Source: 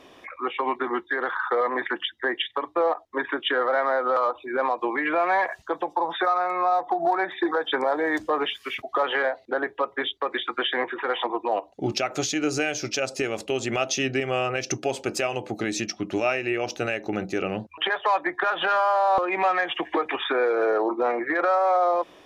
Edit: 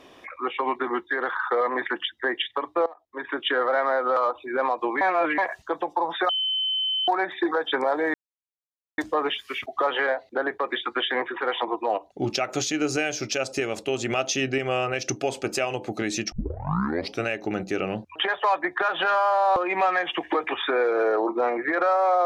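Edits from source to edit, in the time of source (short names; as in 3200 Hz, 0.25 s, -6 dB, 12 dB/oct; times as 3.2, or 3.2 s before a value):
2.86–3.39 fade in quadratic, from -19.5 dB
5.01–5.38 reverse
6.29–7.08 bleep 3060 Hz -22.5 dBFS
8.14 insert silence 0.84 s
9.74–10.2 cut
15.94 tape start 0.91 s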